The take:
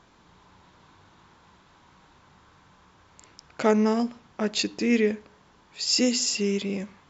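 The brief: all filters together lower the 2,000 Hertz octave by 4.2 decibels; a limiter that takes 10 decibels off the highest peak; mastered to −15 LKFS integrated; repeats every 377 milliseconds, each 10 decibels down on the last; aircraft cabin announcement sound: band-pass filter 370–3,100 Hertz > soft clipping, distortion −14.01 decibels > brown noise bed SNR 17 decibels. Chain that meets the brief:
parametric band 2,000 Hz −4 dB
brickwall limiter −20.5 dBFS
band-pass filter 370–3,100 Hz
repeating echo 377 ms, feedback 32%, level −10 dB
soft clipping −28.5 dBFS
brown noise bed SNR 17 dB
level +22.5 dB

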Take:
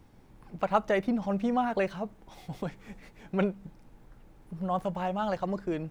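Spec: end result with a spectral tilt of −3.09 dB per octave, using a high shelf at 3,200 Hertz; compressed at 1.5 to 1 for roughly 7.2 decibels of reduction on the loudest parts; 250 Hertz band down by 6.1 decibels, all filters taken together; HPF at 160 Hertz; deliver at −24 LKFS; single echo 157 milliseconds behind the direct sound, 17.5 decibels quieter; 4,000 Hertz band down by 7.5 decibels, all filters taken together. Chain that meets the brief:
high-pass filter 160 Hz
parametric band 250 Hz −6.5 dB
high-shelf EQ 3,200 Hz −4.5 dB
parametric band 4,000 Hz −8 dB
downward compressor 1.5 to 1, threshold −40 dBFS
single-tap delay 157 ms −17.5 dB
level +14.5 dB

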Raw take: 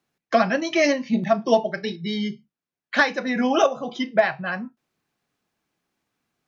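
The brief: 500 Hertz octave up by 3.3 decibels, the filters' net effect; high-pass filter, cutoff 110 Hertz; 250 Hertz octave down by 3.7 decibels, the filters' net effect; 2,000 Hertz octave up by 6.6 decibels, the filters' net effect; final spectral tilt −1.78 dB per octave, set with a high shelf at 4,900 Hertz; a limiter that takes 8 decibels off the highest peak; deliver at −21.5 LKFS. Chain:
high-pass filter 110 Hz
parametric band 250 Hz −5.5 dB
parametric band 500 Hz +5 dB
parametric band 2,000 Hz +8.5 dB
high-shelf EQ 4,900 Hz −5 dB
brickwall limiter −8.5 dBFS

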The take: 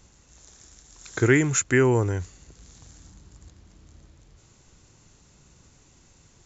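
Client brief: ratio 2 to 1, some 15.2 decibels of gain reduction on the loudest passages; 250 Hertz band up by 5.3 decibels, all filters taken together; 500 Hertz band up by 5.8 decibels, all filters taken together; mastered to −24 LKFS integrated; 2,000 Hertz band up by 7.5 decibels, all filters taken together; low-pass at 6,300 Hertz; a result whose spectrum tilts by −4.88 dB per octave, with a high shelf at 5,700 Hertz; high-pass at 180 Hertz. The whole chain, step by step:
high-pass filter 180 Hz
low-pass filter 6,300 Hz
parametric band 250 Hz +5.5 dB
parametric band 500 Hz +5.5 dB
parametric band 2,000 Hz +9 dB
high-shelf EQ 5,700 Hz −5.5 dB
downward compressor 2 to 1, threshold −38 dBFS
level +7.5 dB

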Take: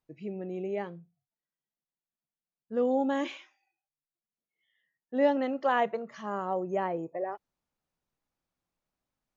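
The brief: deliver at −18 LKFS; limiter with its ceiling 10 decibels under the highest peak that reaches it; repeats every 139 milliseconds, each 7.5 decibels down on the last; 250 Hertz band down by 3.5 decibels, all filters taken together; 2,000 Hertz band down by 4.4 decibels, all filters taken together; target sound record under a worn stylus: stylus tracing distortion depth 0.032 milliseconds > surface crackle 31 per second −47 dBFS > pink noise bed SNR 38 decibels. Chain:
parametric band 250 Hz −4 dB
parametric band 2,000 Hz −5.5 dB
brickwall limiter −25 dBFS
repeating echo 139 ms, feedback 42%, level −7.5 dB
stylus tracing distortion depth 0.032 ms
surface crackle 31 per second −47 dBFS
pink noise bed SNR 38 dB
level +17.5 dB

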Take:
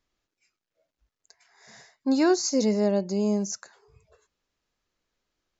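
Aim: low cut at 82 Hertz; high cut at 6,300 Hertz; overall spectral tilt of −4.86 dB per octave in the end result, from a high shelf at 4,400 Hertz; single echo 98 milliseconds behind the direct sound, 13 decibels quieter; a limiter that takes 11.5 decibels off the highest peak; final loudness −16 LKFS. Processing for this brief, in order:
high-pass filter 82 Hz
low-pass filter 6,300 Hz
high-shelf EQ 4,400 Hz −6.5 dB
brickwall limiter −23.5 dBFS
single-tap delay 98 ms −13 dB
level +16 dB

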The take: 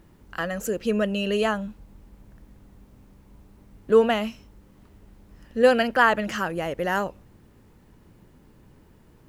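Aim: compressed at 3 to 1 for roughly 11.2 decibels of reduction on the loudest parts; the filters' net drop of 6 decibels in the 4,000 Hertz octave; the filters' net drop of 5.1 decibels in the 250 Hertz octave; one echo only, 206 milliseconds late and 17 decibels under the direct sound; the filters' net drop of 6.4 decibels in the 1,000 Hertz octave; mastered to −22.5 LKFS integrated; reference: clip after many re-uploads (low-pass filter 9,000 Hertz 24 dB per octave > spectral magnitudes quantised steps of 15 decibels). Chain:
parametric band 250 Hz −6 dB
parametric band 1,000 Hz −8 dB
parametric band 4,000 Hz −9 dB
downward compressor 3 to 1, threshold −30 dBFS
low-pass filter 9,000 Hz 24 dB per octave
single-tap delay 206 ms −17 dB
spectral magnitudes quantised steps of 15 dB
level +12 dB

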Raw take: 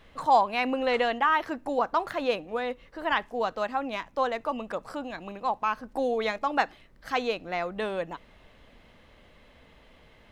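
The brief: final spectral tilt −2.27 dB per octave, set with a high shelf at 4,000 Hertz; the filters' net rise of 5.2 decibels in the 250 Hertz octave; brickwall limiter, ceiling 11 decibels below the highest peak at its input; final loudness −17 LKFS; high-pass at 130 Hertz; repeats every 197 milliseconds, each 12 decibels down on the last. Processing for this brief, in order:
high-pass filter 130 Hz
parametric band 250 Hz +6 dB
high-shelf EQ 4,000 Hz +8 dB
brickwall limiter −19.5 dBFS
repeating echo 197 ms, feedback 25%, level −12 dB
level +13 dB

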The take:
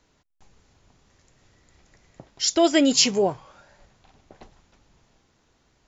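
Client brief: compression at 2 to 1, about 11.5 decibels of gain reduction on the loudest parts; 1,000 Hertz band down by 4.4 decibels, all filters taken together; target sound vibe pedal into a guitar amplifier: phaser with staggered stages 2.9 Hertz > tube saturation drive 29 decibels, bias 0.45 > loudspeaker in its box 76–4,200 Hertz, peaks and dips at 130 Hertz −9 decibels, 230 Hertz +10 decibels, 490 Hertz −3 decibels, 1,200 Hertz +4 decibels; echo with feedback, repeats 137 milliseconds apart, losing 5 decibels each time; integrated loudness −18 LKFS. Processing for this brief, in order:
parametric band 1,000 Hz −8.5 dB
downward compressor 2 to 1, threshold −37 dBFS
repeating echo 137 ms, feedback 56%, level −5 dB
phaser with staggered stages 2.9 Hz
tube saturation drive 29 dB, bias 0.45
loudspeaker in its box 76–4,200 Hz, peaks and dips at 130 Hz −9 dB, 230 Hz +10 dB, 490 Hz −3 dB, 1,200 Hz +4 dB
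level +20.5 dB

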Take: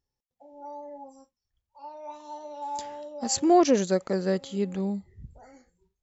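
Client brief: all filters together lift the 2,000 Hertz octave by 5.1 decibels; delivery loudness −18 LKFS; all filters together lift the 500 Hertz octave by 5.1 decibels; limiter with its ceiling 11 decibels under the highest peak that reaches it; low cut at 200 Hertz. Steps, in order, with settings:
high-pass filter 200 Hz
parametric band 500 Hz +7 dB
parametric band 2,000 Hz +6 dB
level +11 dB
brickwall limiter −5.5 dBFS

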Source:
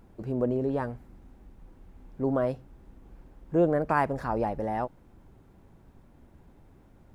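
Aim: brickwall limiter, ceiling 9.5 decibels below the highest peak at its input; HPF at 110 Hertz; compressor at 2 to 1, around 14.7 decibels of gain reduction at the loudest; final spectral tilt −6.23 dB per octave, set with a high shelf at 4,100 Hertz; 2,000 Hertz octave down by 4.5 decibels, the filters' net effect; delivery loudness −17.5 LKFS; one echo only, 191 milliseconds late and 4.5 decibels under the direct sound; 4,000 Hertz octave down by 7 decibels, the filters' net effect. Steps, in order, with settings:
high-pass filter 110 Hz
parametric band 2,000 Hz −4.5 dB
parametric band 4,000 Hz −5 dB
high-shelf EQ 4,100 Hz −5 dB
downward compressor 2 to 1, threshold −47 dBFS
brickwall limiter −35 dBFS
single-tap delay 191 ms −4.5 dB
level +27.5 dB

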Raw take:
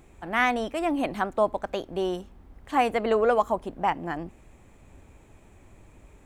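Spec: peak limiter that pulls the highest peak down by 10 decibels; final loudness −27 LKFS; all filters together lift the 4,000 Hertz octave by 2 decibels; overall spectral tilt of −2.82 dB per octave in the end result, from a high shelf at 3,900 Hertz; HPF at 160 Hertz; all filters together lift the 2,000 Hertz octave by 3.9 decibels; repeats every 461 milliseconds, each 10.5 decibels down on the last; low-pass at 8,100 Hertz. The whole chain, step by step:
high-pass filter 160 Hz
low-pass filter 8,100 Hz
parametric band 2,000 Hz +5.5 dB
high-shelf EQ 3,900 Hz −8.5 dB
parametric band 4,000 Hz +5 dB
brickwall limiter −16.5 dBFS
repeating echo 461 ms, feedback 30%, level −10.5 dB
level +2 dB

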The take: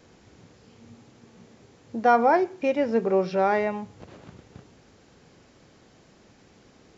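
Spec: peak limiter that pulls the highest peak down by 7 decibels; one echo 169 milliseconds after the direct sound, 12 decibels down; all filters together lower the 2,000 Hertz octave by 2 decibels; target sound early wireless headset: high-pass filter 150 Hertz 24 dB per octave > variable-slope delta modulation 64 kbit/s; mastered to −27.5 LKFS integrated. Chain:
parametric band 2,000 Hz −3 dB
brickwall limiter −16.5 dBFS
high-pass filter 150 Hz 24 dB per octave
single-tap delay 169 ms −12 dB
variable-slope delta modulation 64 kbit/s
level −0.5 dB

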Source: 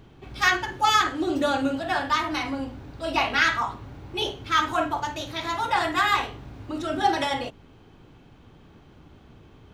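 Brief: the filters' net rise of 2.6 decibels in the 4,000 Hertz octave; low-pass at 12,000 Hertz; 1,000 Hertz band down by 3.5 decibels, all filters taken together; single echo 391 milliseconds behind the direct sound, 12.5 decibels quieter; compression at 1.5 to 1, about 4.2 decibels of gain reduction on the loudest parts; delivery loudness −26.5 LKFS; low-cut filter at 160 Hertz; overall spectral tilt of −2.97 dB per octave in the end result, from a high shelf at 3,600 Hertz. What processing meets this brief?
high-pass filter 160 Hz
low-pass filter 12,000 Hz
parametric band 1,000 Hz −4.5 dB
high-shelf EQ 3,600 Hz −6.5 dB
parametric band 4,000 Hz +7.5 dB
downward compressor 1.5 to 1, threshold −28 dBFS
single-tap delay 391 ms −12.5 dB
level +2 dB

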